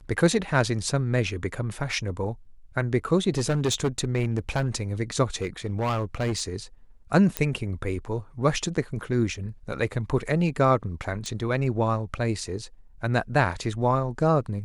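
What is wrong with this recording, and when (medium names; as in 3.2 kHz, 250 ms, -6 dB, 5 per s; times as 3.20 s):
3.37–4.68 s: clipped -19 dBFS
5.35–6.43 s: clipped -22 dBFS
7.37 s: pop -8 dBFS
11.26 s: pop -22 dBFS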